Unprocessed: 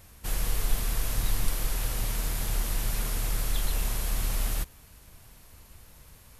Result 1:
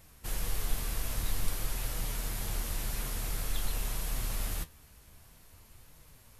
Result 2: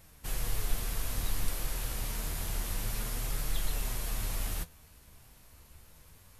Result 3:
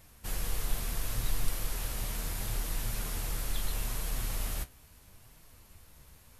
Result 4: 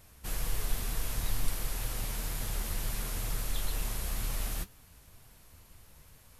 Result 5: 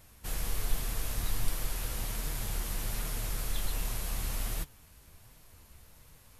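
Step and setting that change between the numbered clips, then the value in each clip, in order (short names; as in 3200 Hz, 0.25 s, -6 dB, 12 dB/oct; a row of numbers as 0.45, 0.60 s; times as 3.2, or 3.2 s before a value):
flange, rate: 0.5, 0.28, 0.74, 2.1, 1.3 Hz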